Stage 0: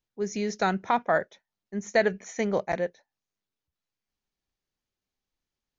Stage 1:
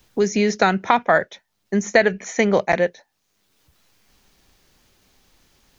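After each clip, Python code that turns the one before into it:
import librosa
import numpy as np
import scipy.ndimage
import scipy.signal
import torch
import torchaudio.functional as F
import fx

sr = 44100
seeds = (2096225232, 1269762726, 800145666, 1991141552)

y = fx.dynamic_eq(x, sr, hz=2600.0, q=0.93, threshold_db=-43.0, ratio=4.0, max_db=5)
y = fx.band_squash(y, sr, depth_pct=70)
y = F.gain(torch.from_numpy(y), 8.0).numpy()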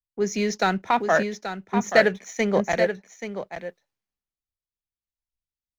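y = fx.leveller(x, sr, passes=1)
y = y + 10.0 ** (-5.0 / 20.0) * np.pad(y, (int(831 * sr / 1000.0), 0))[:len(y)]
y = fx.band_widen(y, sr, depth_pct=100)
y = F.gain(torch.from_numpy(y), -8.5).numpy()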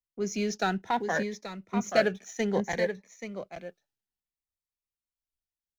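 y = fx.notch_cascade(x, sr, direction='rising', hz=0.62)
y = F.gain(torch.from_numpy(y), -4.5).numpy()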